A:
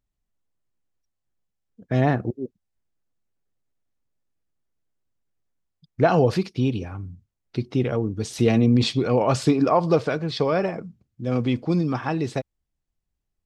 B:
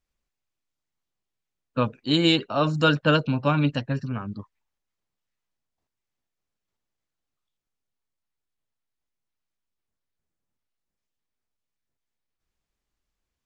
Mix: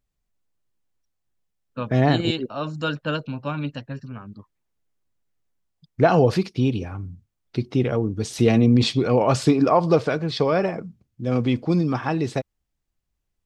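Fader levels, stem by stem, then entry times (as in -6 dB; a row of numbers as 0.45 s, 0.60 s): +1.5 dB, -6.0 dB; 0.00 s, 0.00 s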